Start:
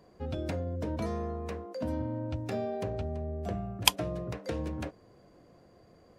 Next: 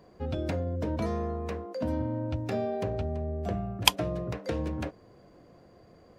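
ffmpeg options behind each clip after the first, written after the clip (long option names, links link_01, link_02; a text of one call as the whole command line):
ffmpeg -i in.wav -af "equalizer=frequency=10000:width=0.69:gain=-4.5,volume=3dB" out.wav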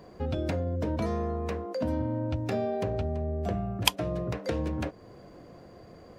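ffmpeg -i in.wav -af "acompressor=threshold=-41dB:ratio=1.5,volume=6dB" out.wav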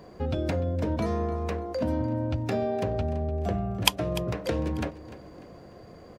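ffmpeg -i in.wav -af "aecho=1:1:297|594|891:0.158|0.0618|0.0241,volume=2dB" out.wav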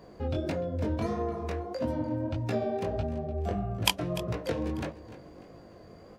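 ffmpeg -i in.wav -af "flanger=delay=17:depth=6.3:speed=1.6" out.wav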